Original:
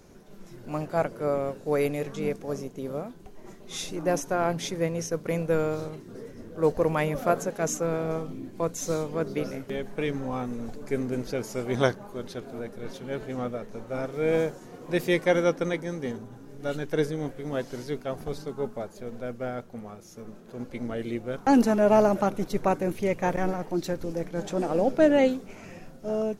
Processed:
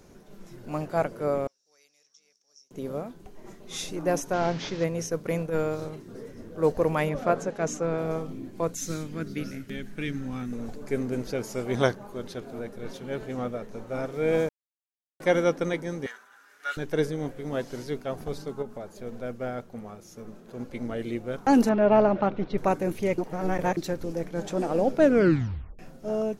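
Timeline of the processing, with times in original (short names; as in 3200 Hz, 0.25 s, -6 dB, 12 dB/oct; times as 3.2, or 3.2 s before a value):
1.47–2.71 band-pass 5600 Hz, Q 13
4.33–4.84 delta modulation 32 kbps, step -35 dBFS
5.37–5.82 transient shaper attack -12 dB, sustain -3 dB
7.09–7.98 air absorption 66 m
8.75–10.53 band shelf 680 Hz -12 dB
14.49–15.2 mute
16.06–16.77 resonant high-pass 1500 Hz, resonance Q 3.4
18.62–19.03 compressor 3:1, threshold -34 dBFS
21.69–22.58 LPF 3800 Hz 24 dB/oct
23.18–23.77 reverse
25.02 tape stop 0.77 s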